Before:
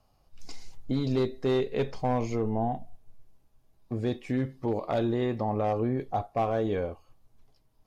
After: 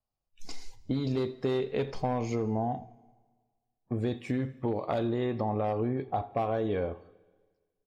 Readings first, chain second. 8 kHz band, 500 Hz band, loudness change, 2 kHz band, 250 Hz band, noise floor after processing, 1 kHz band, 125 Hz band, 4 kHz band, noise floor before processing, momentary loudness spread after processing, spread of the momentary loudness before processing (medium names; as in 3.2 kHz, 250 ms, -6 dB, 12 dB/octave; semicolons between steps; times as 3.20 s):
no reading, -2.0 dB, -2.0 dB, -2.0 dB, -2.0 dB, -84 dBFS, -2.0 dB, -1.5 dB, -2.0 dB, -67 dBFS, 8 LU, 10 LU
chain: spectral noise reduction 25 dB; compression, threshold -28 dBFS, peak gain reduction 6 dB; on a send: feedback delay 83 ms, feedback 42%, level -21 dB; on the sum: Schroeder reverb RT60 1.5 s, combs from 26 ms, DRR 20 dB; trim +2 dB